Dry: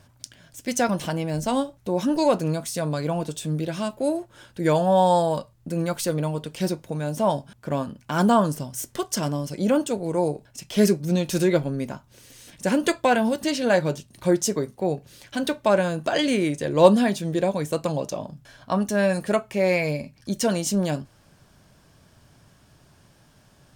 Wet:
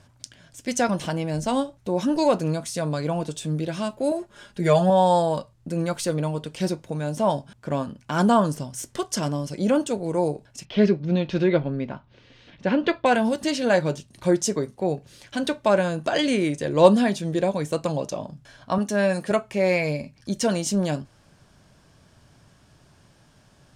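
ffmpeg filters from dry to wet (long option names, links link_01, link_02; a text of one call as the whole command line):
ffmpeg -i in.wav -filter_complex "[0:a]asettb=1/sr,asplit=3[link_01][link_02][link_03];[link_01]atrim=end=4.114[link_04];[link_02]atrim=start=4.11:end=4.9,asetpts=PTS-STARTPTS,afade=type=in:duration=0.004:curve=qsin,afade=type=out:start_time=0.786:duration=0.004:curve=qsin,aecho=1:1:4.9:0.79,atrim=end_sample=34839[link_05];[link_03]atrim=start=4.896[link_06];[link_04][link_05]acrossfade=duration=0.004:curve1=hsin:curve2=qsin[link_07];[link_07][link_06]acrossfade=duration=0.004:curve1=qsin:curve2=hsin,asettb=1/sr,asplit=3[link_08][link_09][link_10];[link_08]atrim=end=10.654[link_11];[link_09]atrim=start=10.65:end=13.06,asetpts=PTS-STARTPTS,afade=type=in:duration=0.004:curve=qsin,afade=type=out:start_time=2.406:duration=0.004:curve=qsin,lowpass=frequency=3800:width=0.5412,lowpass=frequency=3800:width=1.3066[link_12];[link_10]atrim=start=13.056[link_13];[link_11][link_12]acrossfade=duration=0.004:curve1=hsin:curve2=qsin[link_14];[link_14][link_13]acrossfade=duration=0.004:curve1=qsin:curve2=hsin,asettb=1/sr,asplit=3[link_15][link_16][link_17];[link_15]atrim=end=18.784[link_18];[link_16]atrim=start=18.78:end=19.31,asetpts=PTS-STARTPTS,afade=type=in:duration=0.004:curve=qsin,afade=type=out:start_time=0.526:duration=0.004:curve=qsin,highpass=140[link_19];[link_17]atrim=start=19.306[link_20];[link_18][link_19]acrossfade=duration=0.004:curve1=hsin:curve2=qsin[link_21];[link_21][link_20]acrossfade=duration=0.004:curve1=qsin:curve2=hsin,lowpass=9800" out.wav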